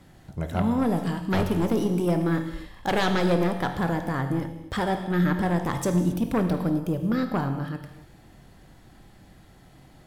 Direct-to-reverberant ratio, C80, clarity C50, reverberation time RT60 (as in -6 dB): 6.0 dB, 9.0 dB, 7.5 dB, no single decay rate